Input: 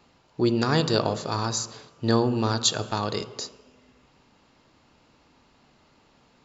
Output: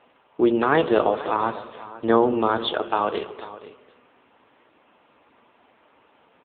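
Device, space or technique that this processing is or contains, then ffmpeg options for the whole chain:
satellite phone: -af "highpass=350,lowpass=3.2k,aecho=1:1:492:0.158,volume=8dB" -ar 8000 -c:a libopencore_amrnb -b:a 6700

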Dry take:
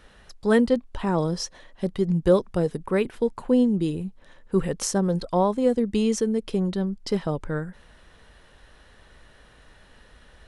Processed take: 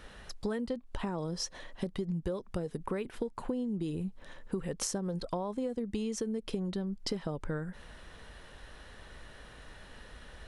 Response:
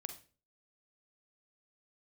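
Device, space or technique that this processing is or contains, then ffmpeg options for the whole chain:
serial compression, leveller first: -af "acompressor=threshold=-23dB:ratio=3,acompressor=threshold=-34dB:ratio=6,volume=2dB"

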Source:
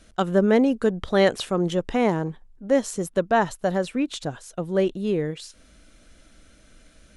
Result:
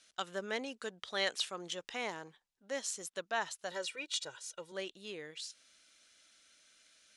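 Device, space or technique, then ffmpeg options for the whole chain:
piezo pickup straight into a mixer: -filter_complex "[0:a]asettb=1/sr,asplit=3[a][b][c];[a]atrim=end=3.714[d];[b]atrim=start=3.71:end=4.72,asetpts=PTS-STARTPTS,afade=t=in:d=0.004:c=qsin,afade=t=out:st=1.006:d=0.004:c=qsin,aecho=1:1:2.1:0.91,atrim=end_sample=44541[e];[c]atrim=start=4.716[f];[d][e]acrossfade=d=0.004:c1=hsin:c2=qsin[g];[g][f]acrossfade=d=0.004:c1=qsin:c2=hsin,lowpass=5.4k,aderivative,volume=3dB"

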